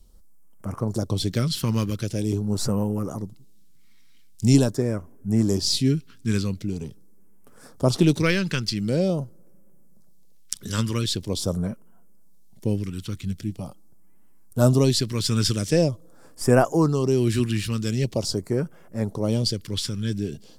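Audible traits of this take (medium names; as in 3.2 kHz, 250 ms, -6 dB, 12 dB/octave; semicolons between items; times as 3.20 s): phasing stages 2, 0.44 Hz, lowest notch 650–3700 Hz; Vorbis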